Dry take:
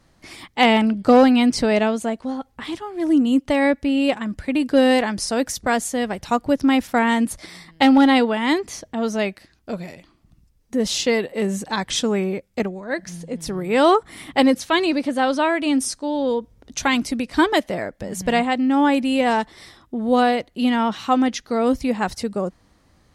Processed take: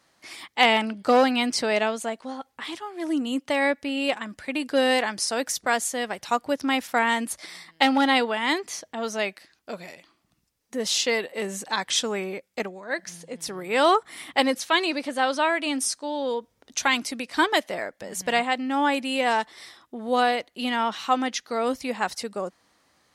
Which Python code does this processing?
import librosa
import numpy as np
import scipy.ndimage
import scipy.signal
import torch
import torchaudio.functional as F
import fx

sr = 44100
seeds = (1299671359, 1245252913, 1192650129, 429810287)

y = fx.highpass(x, sr, hz=800.0, slope=6)